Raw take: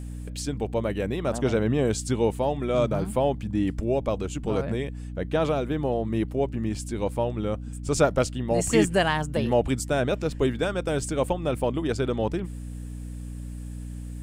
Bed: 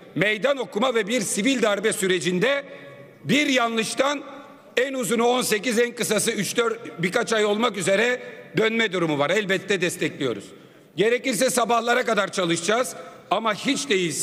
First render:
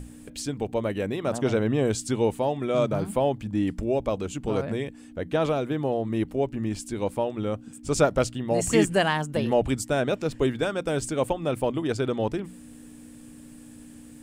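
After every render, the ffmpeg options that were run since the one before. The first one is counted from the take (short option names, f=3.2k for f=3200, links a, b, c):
-af "bandreject=f=60:t=h:w=6,bandreject=f=120:t=h:w=6,bandreject=f=180:t=h:w=6"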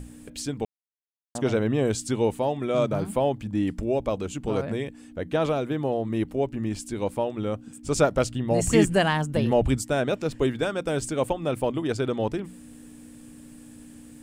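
-filter_complex "[0:a]asettb=1/sr,asplit=3[a][b][c];[a]atrim=end=8.304[d];[b]atrim=start=8.3:end=9.79,asetpts=PTS-STARTPTS,afade=t=in:d=0.004:c=qsin,afade=t=out:st=1.486:d=0.004:c=qsin,lowshelf=f=130:g=9.5[e];[c]atrim=start=9.786[f];[d][e]acrossfade=d=0.004:c1=hsin:c2=qsin[g];[g][f]acrossfade=d=0.004:c1=qsin:c2=hsin,asplit=3[h][i][j];[h]atrim=end=0.65,asetpts=PTS-STARTPTS,afade=t=out:st=0.646:d=0.004:c=hsin[k];[i]atrim=start=0.65:end=1.35,asetpts=PTS-STARTPTS,volume=0[l];[j]atrim=start=1.35,asetpts=PTS-STARTPTS,afade=t=in:d=0.004:c=hsin[m];[k][l][m]concat=n=3:v=0:a=1"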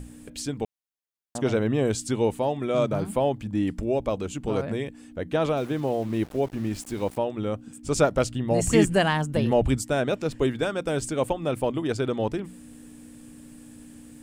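-filter_complex "[0:a]asettb=1/sr,asplit=3[a][b][c];[a]atrim=end=5.574[d];[b]atrim=start=5.57:end=7.18,asetpts=PTS-STARTPTS,afade=t=in:d=0.004:c=qsin,afade=t=out:st=1.606:d=0.004:c=qsin,aeval=exprs='val(0)*gte(abs(val(0)),0.00891)':c=same[e];[c]atrim=start=7.176[f];[d][e]acrossfade=d=0.004:c1=hsin:c2=qsin[g];[g][f]acrossfade=d=0.004:c1=qsin:c2=hsin"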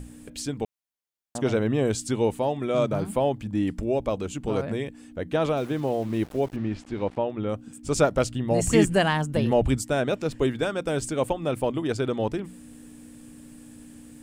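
-filter_complex "[0:a]asettb=1/sr,asplit=3[a][b][c];[a]atrim=end=6.564[d];[b]atrim=start=6.56:end=7.49,asetpts=PTS-STARTPTS,afade=t=in:d=0.004:c=qsin,afade=t=out:st=0.926:d=0.004:c=qsin,lowpass=3.2k[e];[c]atrim=start=7.486[f];[d][e]acrossfade=d=0.004:c1=hsin:c2=qsin[g];[g][f]acrossfade=d=0.004:c1=qsin:c2=hsin"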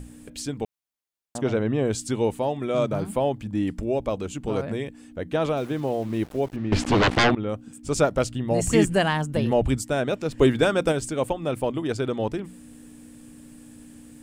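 -filter_complex "[0:a]asettb=1/sr,asplit=3[a][b][c];[a]atrim=end=1.414[d];[b]atrim=start=1.41:end=1.92,asetpts=PTS-STARTPTS,afade=t=in:d=0.004:c=qsin,afade=t=out:st=0.506:d=0.004:c=qsin,lowpass=f=3.5k:p=1[e];[c]atrim=start=1.916[f];[d][e]acrossfade=d=0.004:c1=hsin:c2=qsin[g];[g][f]acrossfade=d=0.004:c1=qsin:c2=hsin,asettb=1/sr,asplit=3[h][i][j];[h]atrim=end=6.724[k];[i]atrim=start=6.72:end=7.35,asetpts=PTS-STARTPTS,afade=t=in:d=0.004:c=qsin,afade=t=out:st=0.626:d=0.004:c=qsin,aeval=exprs='0.188*sin(PI/2*5.62*val(0)/0.188)':c=same[l];[j]atrim=start=7.346[m];[k][l]acrossfade=d=0.004:c1=hsin:c2=qsin[n];[n][m]acrossfade=d=0.004:c1=qsin:c2=hsin,asplit=3[o][p][q];[o]afade=t=out:st=10.37:d=0.02[r];[p]acontrast=64,afade=t=in:st=10.37:d=0.02,afade=t=out:st=10.91:d=0.02[s];[q]afade=t=in:st=10.91:d=0.02[t];[r][s][t]amix=inputs=3:normalize=0"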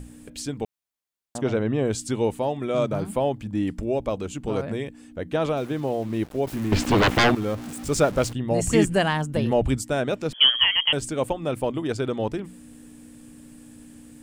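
-filter_complex "[0:a]asettb=1/sr,asplit=3[a][b][c];[a]atrim=end=6.474[d];[b]atrim=start=6.47:end=8.33,asetpts=PTS-STARTPTS,afade=t=in:d=0.004:c=qsin,afade=t=out:st=1.856:d=0.004:c=qsin,aeval=exprs='val(0)+0.5*0.0237*sgn(val(0))':c=same[e];[c]atrim=start=8.326[f];[d][e]acrossfade=d=0.004:c1=hsin:c2=qsin[g];[g][f]acrossfade=d=0.004:c1=qsin:c2=hsin,asettb=1/sr,asplit=3[h][i][j];[h]atrim=end=10.334[k];[i]atrim=start=10.33:end=10.93,asetpts=PTS-STARTPTS,afade=t=in:d=0.004:c=qsin,afade=t=out:st=0.596:d=0.004:c=qsin,lowpass=f=2.9k:t=q:w=0.5098,lowpass=f=2.9k:t=q:w=0.6013,lowpass=f=2.9k:t=q:w=0.9,lowpass=f=2.9k:t=q:w=2.563,afreqshift=-3400[l];[j]atrim=start=10.926[m];[k][l]acrossfade=d=0.004:c1=hsin:c2=qsin[n];[n][m]acrossfade=d=0.004:c1=qsin:c2=hsin"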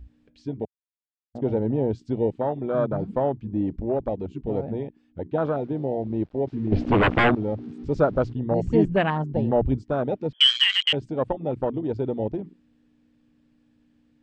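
-af "lowpass=f=4.7k:w=0.5412,lowpass=f=4.7k:w=1.3066,afwtdn=0.0562"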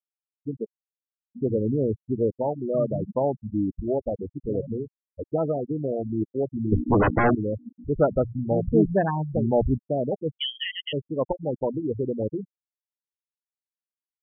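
-af "afftfilt=real='re*gte(hypot(re,im),0.141)':imag='im*gte(hypot(re,im),0.141)':win_size=1024:overlap=0.75,lowpass=1.5k"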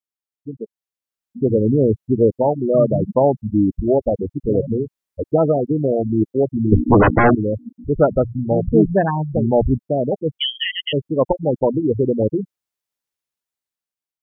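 -af "dynaudnorm=f=480:g=5:m=10dB"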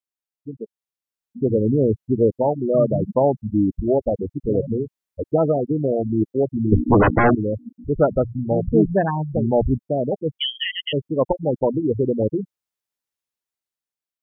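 -af "volume=-2.5dB"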